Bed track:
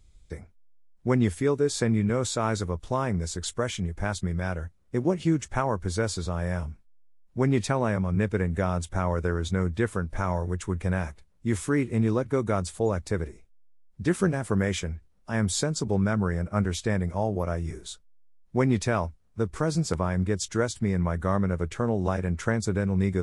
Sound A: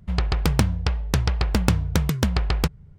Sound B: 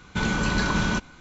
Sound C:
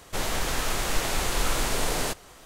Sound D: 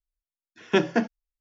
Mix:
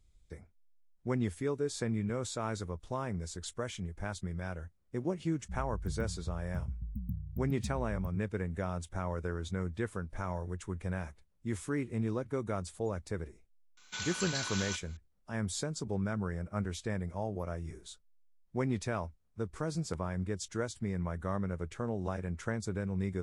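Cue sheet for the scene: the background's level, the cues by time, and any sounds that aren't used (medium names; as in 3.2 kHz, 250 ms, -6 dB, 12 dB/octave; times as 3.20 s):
bed track -9.5 dB
5.41 s: add A -17 dB + brick-wall FIR band-stop 250–13000 Hz
13.77 s: add B + differentiator
not used: C, D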